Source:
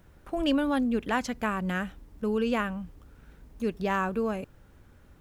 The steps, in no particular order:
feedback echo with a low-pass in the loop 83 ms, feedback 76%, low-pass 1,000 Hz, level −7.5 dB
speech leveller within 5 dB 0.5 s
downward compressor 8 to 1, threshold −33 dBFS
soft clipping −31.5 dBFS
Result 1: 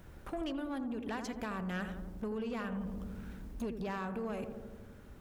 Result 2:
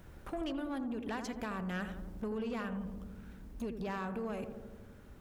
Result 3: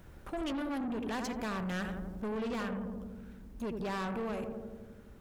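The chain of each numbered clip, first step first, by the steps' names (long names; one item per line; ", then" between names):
downward compressor, then feedback echo with a low-pass in the loop, then speech leveller, then soft clipping
downward compressor, then speech leveller, then feedback echo with a low-pass in the loop, then soft clipping
speech leveller, then feedback echo with a low-pass in the loop, then soft clipping, then downward compressor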